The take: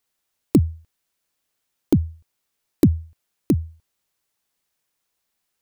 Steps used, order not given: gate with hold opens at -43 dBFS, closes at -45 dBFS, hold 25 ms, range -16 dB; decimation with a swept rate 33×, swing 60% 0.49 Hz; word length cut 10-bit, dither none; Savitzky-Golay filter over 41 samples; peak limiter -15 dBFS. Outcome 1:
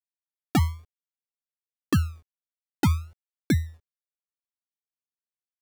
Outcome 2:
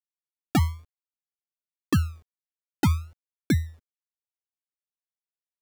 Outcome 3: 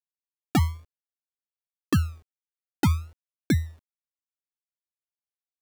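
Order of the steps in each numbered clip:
word length cut > Savitzky-Golay filter > decimation with a swept rate > gate with hold > peak limiter; gate with hold > word length cut > Savitzky-Golay filter > decimation with a swept rate > peak limiter; Savitzky-Golay filter > decimation with a swept rate > gate with hold > word length cut > peak limiter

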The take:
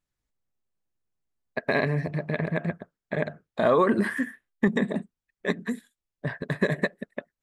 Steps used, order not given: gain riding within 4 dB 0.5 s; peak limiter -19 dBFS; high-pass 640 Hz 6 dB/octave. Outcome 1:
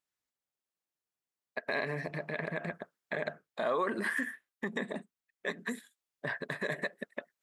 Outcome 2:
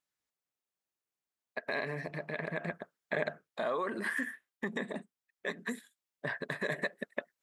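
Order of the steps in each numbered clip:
gain riding > peak limiter > high-pass; peak limiter > gain riding > high-pass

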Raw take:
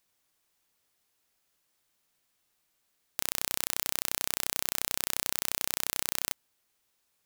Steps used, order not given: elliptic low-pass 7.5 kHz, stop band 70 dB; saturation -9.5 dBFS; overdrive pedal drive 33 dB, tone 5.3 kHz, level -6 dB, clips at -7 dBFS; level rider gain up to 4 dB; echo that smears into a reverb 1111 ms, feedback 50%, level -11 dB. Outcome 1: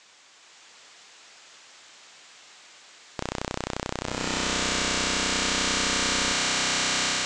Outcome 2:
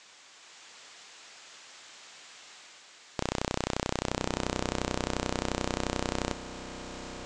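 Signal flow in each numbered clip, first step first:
echo that smears into a reverb > saturation > level rider > overdrive pedal > elliptic low-pass; level rider > overdrive pedal > echo that smears into a reverb > saturation > elliptic low-pass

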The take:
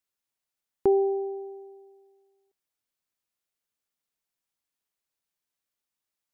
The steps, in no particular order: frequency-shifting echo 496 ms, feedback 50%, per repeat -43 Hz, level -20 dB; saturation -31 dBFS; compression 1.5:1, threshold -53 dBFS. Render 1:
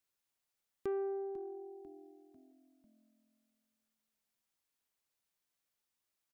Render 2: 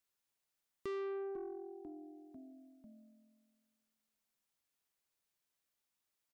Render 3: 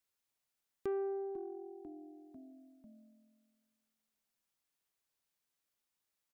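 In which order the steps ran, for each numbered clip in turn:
compression > frequency-shifting echo > saturation; frequency-shifting echo > saturation > compression; frequency-shifting echo > compression > saturation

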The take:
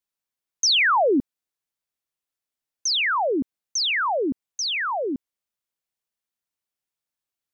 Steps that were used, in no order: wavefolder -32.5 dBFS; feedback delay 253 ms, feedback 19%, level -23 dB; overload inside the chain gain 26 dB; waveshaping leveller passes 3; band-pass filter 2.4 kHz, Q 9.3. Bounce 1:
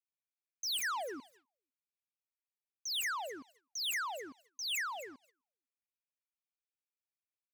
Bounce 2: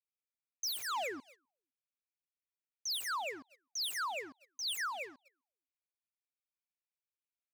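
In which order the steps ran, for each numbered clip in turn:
band-pass filter > overload inside the chain > wavefolder > feedback delay > waveshaping leveller; band-pass filter > overload inside the chain > feedback delay > waveshaping leveller > wavefolder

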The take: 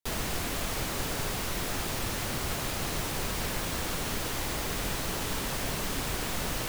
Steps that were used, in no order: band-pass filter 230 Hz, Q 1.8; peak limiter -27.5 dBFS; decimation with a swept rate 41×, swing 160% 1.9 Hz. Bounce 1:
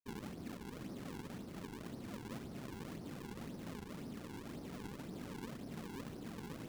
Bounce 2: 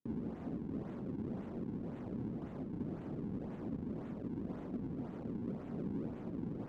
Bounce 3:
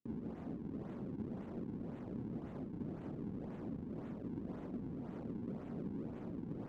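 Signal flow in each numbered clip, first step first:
peak limiter > band-pass filter > decimation with a swept rate; decimation with a swept rate > peak limiter > band-pass filter; peak limiter > decimation with a swept rate > band-pass filter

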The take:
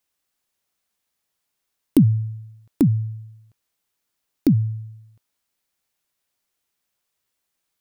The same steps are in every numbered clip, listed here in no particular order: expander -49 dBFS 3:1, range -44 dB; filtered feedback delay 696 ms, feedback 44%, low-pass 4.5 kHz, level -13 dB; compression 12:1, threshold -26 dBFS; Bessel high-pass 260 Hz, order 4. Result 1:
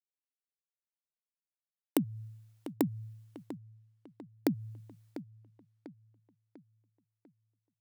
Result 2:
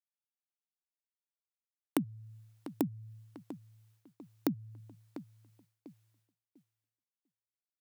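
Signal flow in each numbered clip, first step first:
expander > Bessel high-pass > compression > filtered feedback delay; compression > filtered feedback delay > expander > Bessel high-pass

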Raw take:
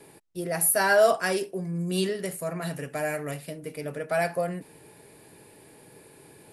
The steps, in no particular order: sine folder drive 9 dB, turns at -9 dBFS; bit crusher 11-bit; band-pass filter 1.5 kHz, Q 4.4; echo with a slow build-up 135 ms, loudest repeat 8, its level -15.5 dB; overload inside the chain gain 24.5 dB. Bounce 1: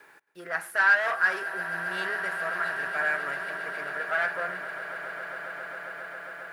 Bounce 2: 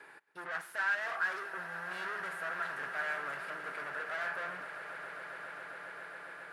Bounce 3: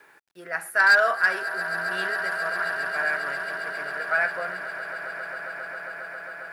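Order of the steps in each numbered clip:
overload inside the chain > band-pass filter > sine folder > bit crusher > echo with a slow build-up; sine folder > overload inside the chain > echo with a slow build-up > bit crusher > band-pass filter; band-pass filter > overload inside the chain > sine folder > echo with a slow build-up > bit crusher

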